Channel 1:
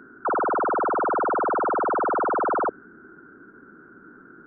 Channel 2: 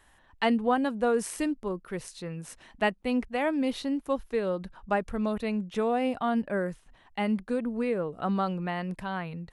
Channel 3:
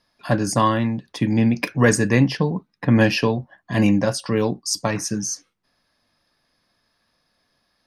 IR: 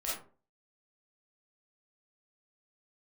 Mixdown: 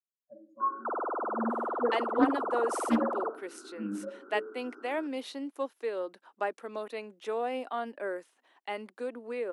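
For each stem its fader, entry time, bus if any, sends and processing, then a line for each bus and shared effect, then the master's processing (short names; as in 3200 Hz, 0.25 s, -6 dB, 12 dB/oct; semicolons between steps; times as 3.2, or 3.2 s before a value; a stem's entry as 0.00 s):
0.0 dB, 0.60 s, send -17 dB, steep low-pass 1300 Hz; limiter -29 dBFS, peak gain reduction 11 dB
-4.5 dB, 1.50 s, no send, dry
-4.0 dB, 0.00 s, send -7.5 dB, spectral expander 4:1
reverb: on, RT60 0.40 s, pre-delay 5 ms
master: steep high-pass 290 Hz 36 dB/oct; Doppler distortion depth 0.22 ms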